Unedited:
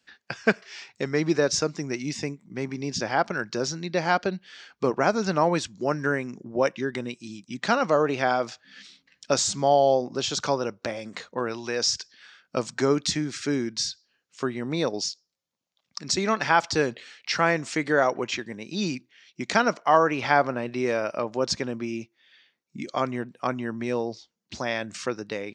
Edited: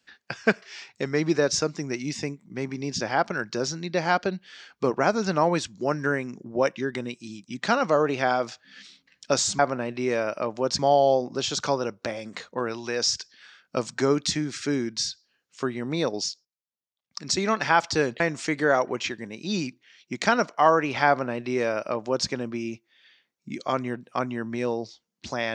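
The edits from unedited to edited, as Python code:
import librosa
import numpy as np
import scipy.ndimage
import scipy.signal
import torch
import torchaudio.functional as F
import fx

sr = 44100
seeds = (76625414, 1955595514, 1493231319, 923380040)

y = fx.edit(x, sr, fx.fade_down_up(start_s=15.1, length_s=0.96, db=-16.5, fade_s=0.15, curve='log'),
    fx.cut(start_s=17.0, length_s=0.48),
    fx.duplicate(start_s=20.36, length_s=1.2, to_s=9.59), tone=tone)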